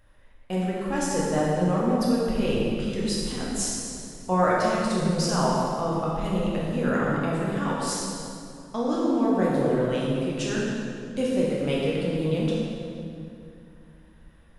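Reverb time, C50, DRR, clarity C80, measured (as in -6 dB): 2.6 s, -2.0 dB, -6.0 dB, -0.5 dB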